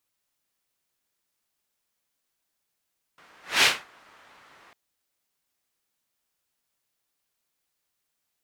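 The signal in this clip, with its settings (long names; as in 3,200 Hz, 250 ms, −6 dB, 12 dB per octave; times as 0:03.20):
pass-by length 1.55 s, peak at 0:00.45, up 0.23 s, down 0.26 s, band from 1,400 Hz, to 2,800 Hz, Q 1.1, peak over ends 37 dB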